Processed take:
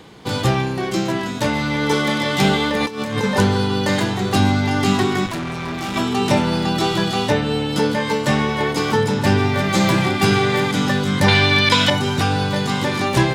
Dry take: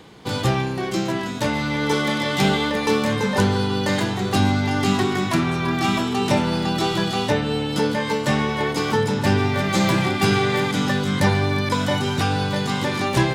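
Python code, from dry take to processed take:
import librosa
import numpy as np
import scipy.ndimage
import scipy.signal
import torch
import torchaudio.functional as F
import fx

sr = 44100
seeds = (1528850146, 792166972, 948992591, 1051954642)

y = fx.over_compress(x, sr, threshold_db=-24.0, ratio=-0.5, at=(2.79, 3.22), fade=0.02)
y = fx.tube_stage(y, sr, drive_db=25.0, bias=0.8, at=(5.26, 5.96))
y = fx.peak_eq(y, sr, hz=3100.0, db=13.5, octaves=1.8, at=(11.28, 11.9))
y = y * librosa.db_to_amplitude(2.5)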